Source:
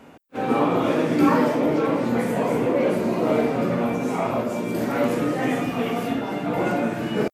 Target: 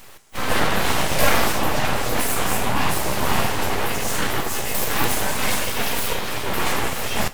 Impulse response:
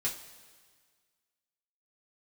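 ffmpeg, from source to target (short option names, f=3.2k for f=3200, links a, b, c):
-filter_complex "[0:a]crystalizer=i=7:c=0,aeval=exprs='abs(val(0))':c=same,asplit=2[a][b];[1:a]atrim=start_sample=2205,asetrate=41454,aresample=44100[c];[b][c]afir=irnorm=-1:irlink=0,volume=-12.5dB[d];[a][d]amix=inputs=2:normalize=0"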